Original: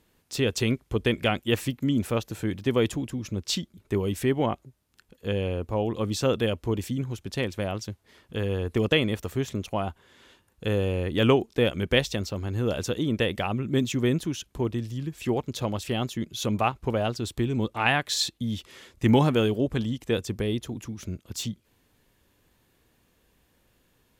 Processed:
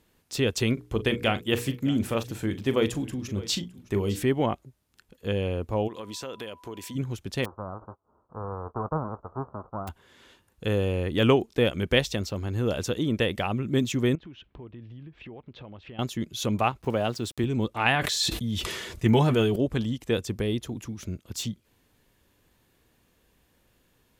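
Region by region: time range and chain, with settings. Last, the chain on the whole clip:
0.73–4.23 s: hum notches 60/120/180/240/300/360/420/480 Hz + doubling 40 ms -13 dB + delay 613 ms -19 dB
5.87–6.94 s: high-pass 500 Hz 6 dB/octave + compression 4:1, threshold -34 dBFS + whistle 990 Hz -52 dBFS
7.44–9.87 s: formants flattened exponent 0.1 + steep low-pass 1.3 kHz 72 dB/octave
14.15–15.99 s: low-pass 3.1 kHz 24 dB/octave + compression 4:1, threshold -43 dBFS
16.82–17.44 s: high-pass 100 Hz + small samples zeroed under -47 dBFS
17.95–19.56 s: comb of notches 270 Hz + decay stretcher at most 31 dB/s
whole clip: none

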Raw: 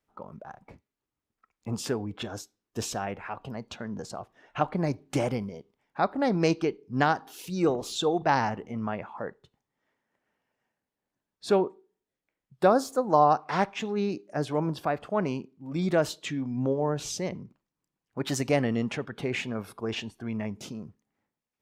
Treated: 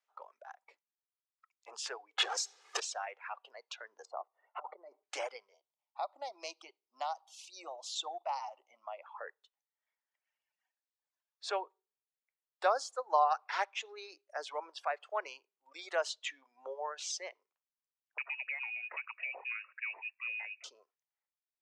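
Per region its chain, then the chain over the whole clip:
2.18–2.80 s: comb 2.4 ms, depth 82% + power-law waveshaper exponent 0.5 + three bands compressed up and down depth 100%
4.05–5.03 s: Savitzky-Golay filter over 65 samples + compressor with a negative ratio -31 dBFS, ratio -0.5
5.54–9.06 s: peaking EQ 600 Hz +3 dB 0.44 oct + static phaser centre 440 Hz, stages 6 + compression 2:1, threshold -29 dBFS
18.18–20.64 s: compression 20:1, threshold -30 dBFS + frequency inversion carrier 2.7 kHz
whole clip: low-pass 7.5 kHz 24 dB/octave; reverb removal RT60 1.8 s; Bessel high-pass 880 Hz, order 8; trim -2 dB

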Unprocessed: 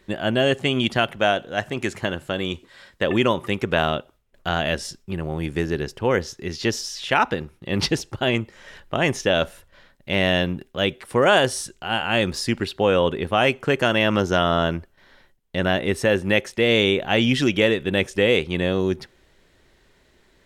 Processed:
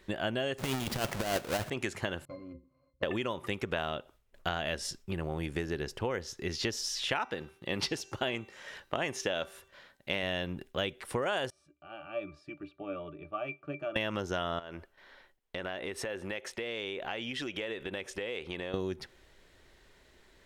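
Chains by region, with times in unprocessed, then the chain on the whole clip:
0.58–1.70 s: square wave that keeps the level + compressor with a negative ratio -19 dBFS, ratio -0.5
2.25–3.03 s: median filter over 25 samples + hum notches 60/120/180/240/300/360/420/480/540 Hz + pitch-class resonator C, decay 0.17 s
7.19–10.23 s: high-pass 170 Hz 6 dB/octave + de-hum 388.4 Hz, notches 21
11.50–13.96 s: high-pass 350 Hz 6 dB/octave + pitch-class resonator D, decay 0.13 s
14.59–18.74 s: tone controls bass -9 dB, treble -5 dB + compression 8:1, threshold -30 dBFS
whole clip: compression 10:1, threshold -26 dBFS; peaking EQ 180 Hz -4 dB 1.8 oct; trim -2 dB

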